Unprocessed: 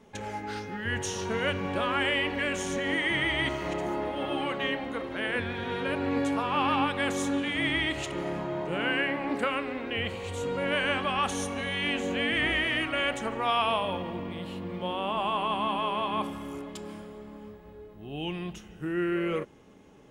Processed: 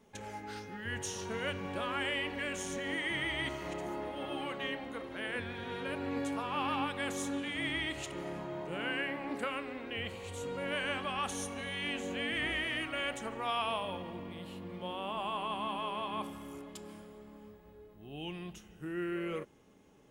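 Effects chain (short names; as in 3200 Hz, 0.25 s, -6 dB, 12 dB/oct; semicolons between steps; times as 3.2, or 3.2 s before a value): high shelf 7300 Hz +8.5 dB; gain -8 dB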